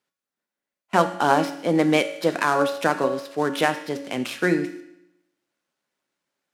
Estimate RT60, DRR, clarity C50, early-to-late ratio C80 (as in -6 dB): 0.85 s, 6.5 dB, 10.5 dB, 12.5 dB